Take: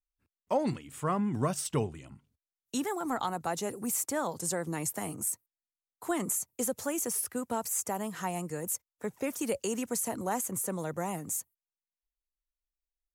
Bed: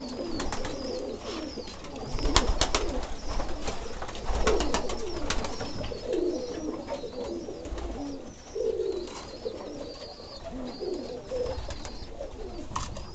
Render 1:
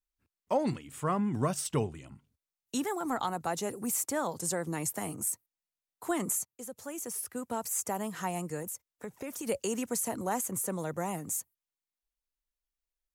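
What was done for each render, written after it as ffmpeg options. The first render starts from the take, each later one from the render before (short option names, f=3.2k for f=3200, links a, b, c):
-filter_complex "[0:a]asettb=1/sr,asplit=3[a][b][c];[a]atrim=end=8.624[d];[b]atrim=start=8.62:end=9.47,asetpts=PTS-STARTPTS,afade=t=in:d=0.004:c=qsin,afade=t=out:st=0.846:d=0.004:c=qsin,acompressor=threshold=-35dB:ratio=6:attack=3.2:release=140:knee=1:detection=peak[e];[c]atrim=start=9.466[f];[d][e]acrossfade=d=0.004:c1=hsin:c2=qsin[g];[g][f]acrossfade=d=0.004:c1=qsin:c2=hsin,asplit=2[h][i];[h]atrim=end=6.45,asetpts=PTS-STARTPTS,afade=t=out:st=6.446:d=0.004:c=hsin:silence=0.149624[j];[i]atrim=start=6.45,asetpts=PTS-STARTPTS,afade=t=in:d=1.44:silence=0.149624[k];[j][k]concat=n=2:v=0:a=1"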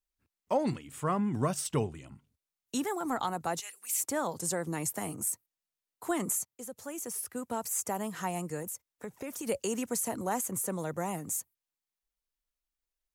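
-filter_complex "[0:a]asettb=1/sr,asplit=3[a][b][c];[a]atrim=end=3.604[d];[b]atrim=start=3.6:end=4.01,asetpts=PTS-STARTPTS,afade=t=in:d=0.004:c=qsin,afade=t=out:st=0.406:d=0.004:c=qsin,highpass=f=2.5k:t=q:w=1.6[e];[c]atrim=start=4.006[f];[d][e]acrossfade=d=0.004:c1=hsin:c2=qsin[g];[g][f]acrossfade=d=0.004:c1=qsin:c2=hsin"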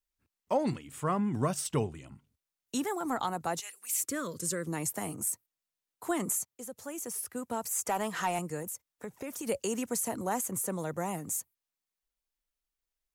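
-filter_complex "[0:a]asettb=1/sr,asplit=3[a][b][c];[a]atrim=end=4.004[d];[b]atrim=start=4:end=4.66,asetpts=PTS-STARTPTS,afade=t=in:d=0.004:c=qsin,afade=t=out:st=0.656:d=0.004:c=qsin,asuperstop=centerf=790:order=4:qfactor=1.3[e];[c]atrim=start=4.656[f];[d][e]acrossfade=d=0.004:c1=hsin:c2=qsin[g];[g][f]acrossfade=d=0.004:c1=qsin:c2=hsin,asettb=1/sr,asplit=3[h][i][j];[h]atrim=end=7.874[k];[i]atrim=start=7.87:end=8.39,asetpts=PTS-STARTPTS,afade=t=in:d=0.004:c=qsin,afade=t=out:st=0.516:d=0.004:c=qsin,asplit=2[l][m];[m]highpass=f=720:p=1,volume=14dB,asoftclip=type=tanh:threshold=-20dB[n];[l][n]amix=inputs=2:normalize=0,lowpass=f=4.3k:p=1,volume=-6dB[o];[j]atrim=start=8.386[p];[k][o]acrossfade=d=0.004:c1=hsin:c2=qsin[q];[q][p]acrossfade=d=0.004:c1=qsin:c2=hsin"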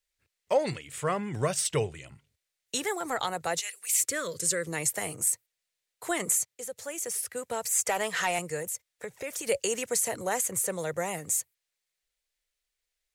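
-af "equalizer=f=125:t=o:w=1:g=3,equalizer=f=250:t=o:w=1:g=-10,equalizer=f=500:t=o:w=1:g=8,equalizer=f=1k:t=o:w=1:g=-4,equalizer=f=2k:t=o:w=1:g=9,equalizer=f=4k:t=o:w=1:g=6,equalizer=f=8k:t=o:w=1:g=6"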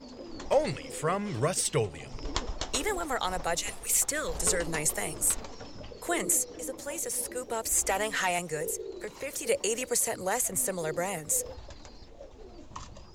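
-filter_complex "[1:a]volume=-9.5dB[a];[0:a][a]amix=inputs=2:normalize=0"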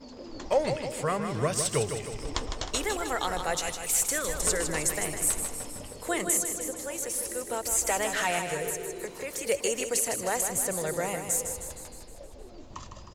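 -af "aecho=1:1:156|312|468|624|780|936|1092:0.422|0.236|0.132|0.0741|0.0415|0.0232|0.013"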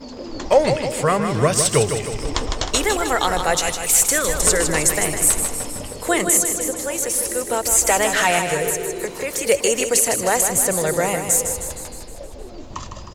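-af "volume=10.5dB,alimiter=limit=-3dB:level=0:latency=1"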